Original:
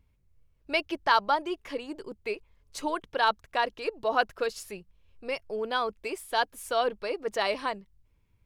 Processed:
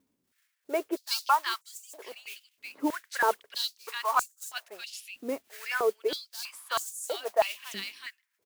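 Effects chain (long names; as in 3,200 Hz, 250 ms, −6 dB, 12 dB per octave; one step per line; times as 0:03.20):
multiband delay without the direct sound lows, highs 370 ms, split 1,900 Hz
noise that follows the level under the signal 14 dB
high-pass on a step sequencer 3.1 Hz 260–7,200 Hz
level −2.5 dB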